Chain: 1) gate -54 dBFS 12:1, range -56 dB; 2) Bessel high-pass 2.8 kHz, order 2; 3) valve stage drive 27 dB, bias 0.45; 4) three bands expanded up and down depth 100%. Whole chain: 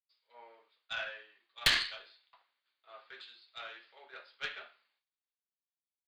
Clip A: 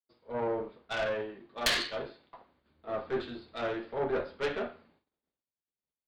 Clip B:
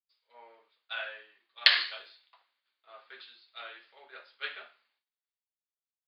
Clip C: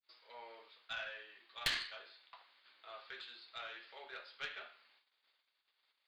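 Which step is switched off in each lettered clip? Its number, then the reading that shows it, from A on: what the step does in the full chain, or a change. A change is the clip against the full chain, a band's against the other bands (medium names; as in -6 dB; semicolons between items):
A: 2, 500 Hz band +14.5 dB; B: 3, crest factor change +5.5 dB; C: 4, 500 Hz band +4.5 dB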